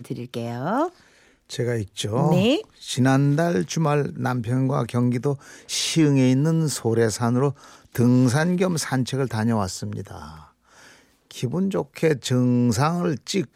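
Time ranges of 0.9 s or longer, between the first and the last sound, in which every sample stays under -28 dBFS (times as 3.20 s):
10.28–11.31 s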